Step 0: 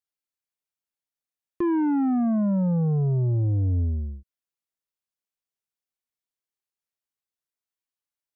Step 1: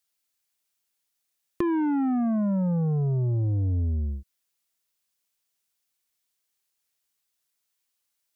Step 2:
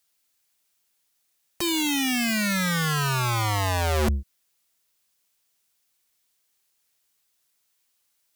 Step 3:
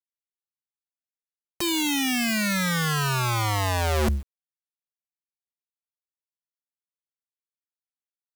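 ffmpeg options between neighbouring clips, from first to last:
-af "highshelf=f=2.1k:g=9,acompressor=threshold=-30dB:ratio=6,volume=5.5dB"
-af "aeval=exprs='(mod(21.1*val(0)+1,2)-1)/21.1':c=same,volume=7dB"
-af "acrusher=bits=7:mix=0:aa=0.000001"

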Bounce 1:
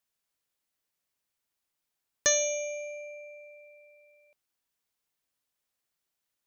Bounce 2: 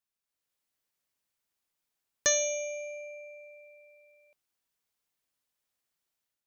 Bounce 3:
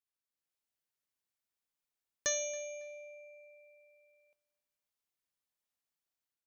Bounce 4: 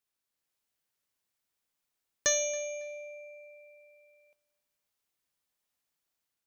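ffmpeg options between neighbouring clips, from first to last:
-af "dynaudnorm=f=270:g=3:m=7dB,volume=-7.5dB"
-af "aecho=1:1:276|552:0.0708|0.0212,volume=-7.5dB"
-af "aeval=exprs='0.112*(cos(1*acos(clip(val(0)/0.112,-1,1)))-cos(1*PI/2))+0.00224*(cos(4*acos(clip(val(0)/0.112,-1,1)))-cos(4*PI/2))':c=same,volume=6dB"

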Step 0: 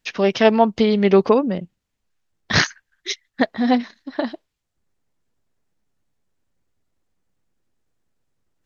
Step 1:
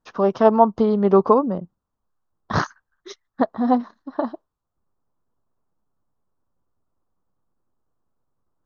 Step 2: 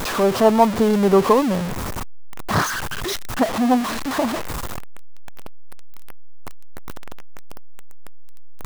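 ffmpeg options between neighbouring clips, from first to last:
-af "highshelf=f=1.6k:t=q:w=3:g=-11.5,volume=-2dB"
-af "aeval=exprs='val(0)+0.5*0.126*sgn(val(0))':c=same,volume=-1.5dB"

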